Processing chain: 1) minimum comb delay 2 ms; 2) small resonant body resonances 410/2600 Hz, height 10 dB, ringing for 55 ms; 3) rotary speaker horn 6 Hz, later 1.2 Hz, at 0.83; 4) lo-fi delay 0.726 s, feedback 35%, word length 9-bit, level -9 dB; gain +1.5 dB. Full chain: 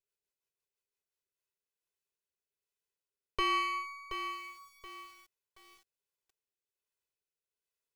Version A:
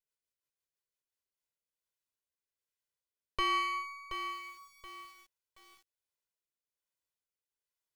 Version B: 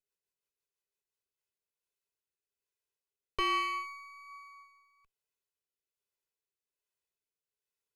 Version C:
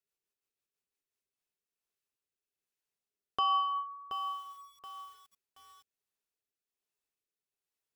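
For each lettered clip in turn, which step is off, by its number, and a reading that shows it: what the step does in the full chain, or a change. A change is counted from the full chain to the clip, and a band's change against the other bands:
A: 2, 500 Hz band -3.0 dB; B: 4, loudness change +1.5 LU; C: 1, 2 kHz band -21.0 dB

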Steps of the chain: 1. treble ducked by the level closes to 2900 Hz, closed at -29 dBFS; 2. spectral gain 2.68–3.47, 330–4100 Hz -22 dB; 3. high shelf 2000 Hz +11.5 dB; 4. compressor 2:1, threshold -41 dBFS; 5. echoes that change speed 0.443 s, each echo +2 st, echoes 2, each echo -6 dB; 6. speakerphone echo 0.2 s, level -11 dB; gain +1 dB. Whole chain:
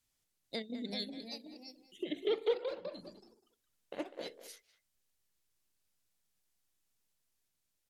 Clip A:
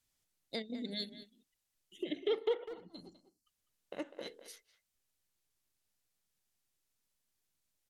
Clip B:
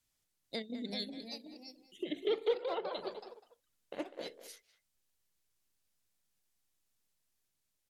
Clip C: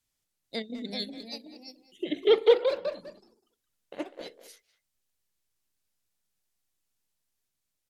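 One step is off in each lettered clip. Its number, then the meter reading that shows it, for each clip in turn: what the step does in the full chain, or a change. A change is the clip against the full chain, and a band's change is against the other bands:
5, momentary loudness spread change +1 LU; 2, 1 kHz band +5.5 dB; 4, mean gain reduction 5.0 dB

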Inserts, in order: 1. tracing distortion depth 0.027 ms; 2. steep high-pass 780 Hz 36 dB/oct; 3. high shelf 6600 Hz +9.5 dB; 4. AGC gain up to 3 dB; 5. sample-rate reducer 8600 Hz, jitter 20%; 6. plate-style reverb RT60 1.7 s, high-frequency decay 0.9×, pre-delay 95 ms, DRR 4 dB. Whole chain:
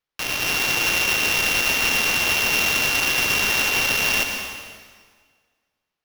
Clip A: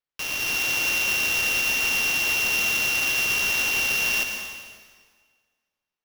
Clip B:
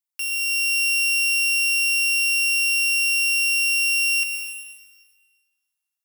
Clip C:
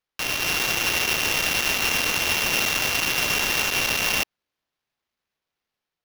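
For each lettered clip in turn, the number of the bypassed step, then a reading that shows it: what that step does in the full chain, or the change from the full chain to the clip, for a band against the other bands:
3, 2 kHz band +5.0 dB; 5, crest factor change -2.5 dB; 6, crest factor change -2.5 dB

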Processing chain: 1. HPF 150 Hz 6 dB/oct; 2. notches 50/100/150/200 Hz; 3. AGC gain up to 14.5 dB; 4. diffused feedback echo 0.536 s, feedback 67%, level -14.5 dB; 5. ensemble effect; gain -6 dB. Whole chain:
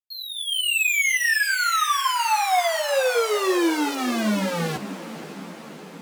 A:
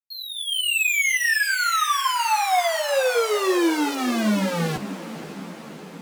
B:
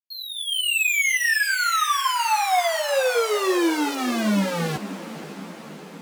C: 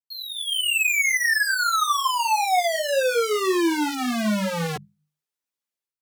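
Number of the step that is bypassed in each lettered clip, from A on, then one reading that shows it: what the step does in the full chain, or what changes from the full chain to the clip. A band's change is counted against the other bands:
1, 125 Hz band +2.5 dB; 2, 125 Hz band +2.0 dB; 4, momentary loudness spread change -9 LU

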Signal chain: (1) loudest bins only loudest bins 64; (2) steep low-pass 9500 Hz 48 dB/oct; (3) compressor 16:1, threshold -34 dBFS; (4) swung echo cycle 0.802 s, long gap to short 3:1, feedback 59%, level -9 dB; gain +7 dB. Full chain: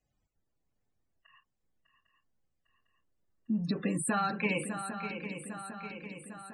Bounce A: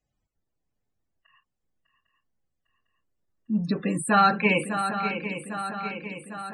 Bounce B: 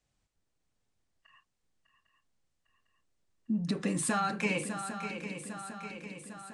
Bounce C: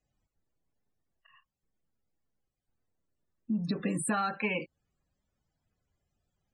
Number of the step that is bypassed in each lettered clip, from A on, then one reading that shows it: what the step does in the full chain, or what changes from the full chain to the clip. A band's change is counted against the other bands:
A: 3, mean gain reduction 6.5 dB; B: 1, 8 kHz band +2.0 dB; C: 4, echo-to-direct -5.0 dB to none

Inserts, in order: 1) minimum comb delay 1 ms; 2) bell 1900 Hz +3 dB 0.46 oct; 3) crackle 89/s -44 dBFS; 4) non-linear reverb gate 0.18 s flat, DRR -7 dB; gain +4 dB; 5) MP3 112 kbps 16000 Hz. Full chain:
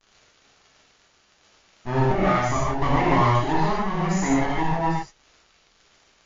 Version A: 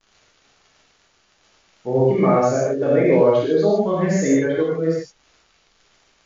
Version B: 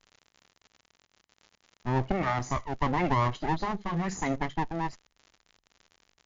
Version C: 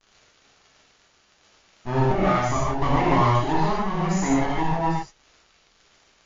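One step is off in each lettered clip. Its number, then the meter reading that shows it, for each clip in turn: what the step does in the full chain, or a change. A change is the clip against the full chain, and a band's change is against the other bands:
1, 500 Hz band +13.0 dB; 4, momentary loudness spread change -1 LU; 2, 2 kHz band -2.0 dB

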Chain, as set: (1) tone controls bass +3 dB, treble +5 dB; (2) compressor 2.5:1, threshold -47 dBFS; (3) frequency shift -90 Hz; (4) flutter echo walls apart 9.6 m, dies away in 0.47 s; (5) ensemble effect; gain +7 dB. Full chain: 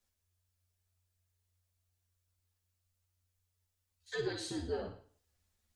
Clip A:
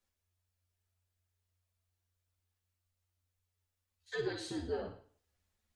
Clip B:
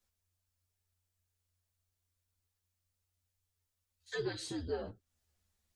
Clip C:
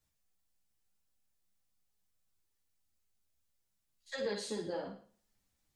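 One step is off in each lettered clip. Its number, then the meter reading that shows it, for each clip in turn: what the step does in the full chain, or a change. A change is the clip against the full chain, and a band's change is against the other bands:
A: 1, 8 kHz band -4.0 dB; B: 4, momentary loudness spread change -5 LU; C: 3, 125 Hz band -6.5 dB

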